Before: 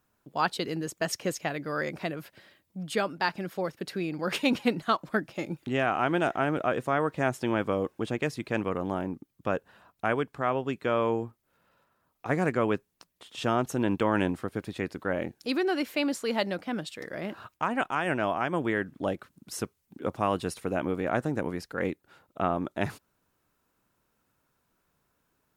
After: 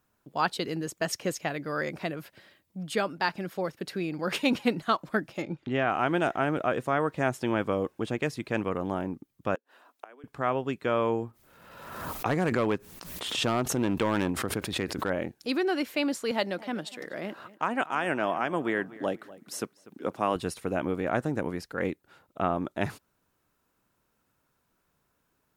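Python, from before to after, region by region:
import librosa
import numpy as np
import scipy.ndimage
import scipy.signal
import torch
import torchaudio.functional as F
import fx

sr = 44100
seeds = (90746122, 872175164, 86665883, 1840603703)

y = fx.chain(x, sr, fx.lowpass(hz=4100.0, slope=12),
    fx.notch(hz=2600.0, q=23.0), at=(5.42, 5.9))
y = fx.chain(y, sr, fx.steep_highpass(hz=240.0, slope=96),
    fx.quant_companded(bits=8),
    fx.gate_flip(shuts_db=-26.0, range_db=-25), at=(9.55, 10.24))
y = fx.chain(y, sr, fx.overload_stage(gain_db=20.0),
    fx.pre_swell(db_per_s=42.0), at=(11.25, 15.1))
y = fx.chain(y, sr, fx.highpass(hz=180.0, slope=12),
    fx.echo_filtered(ms=244, feedback_pct=29, hz=4200.0, wet_db=-18.5), at=(16.31, 20.36))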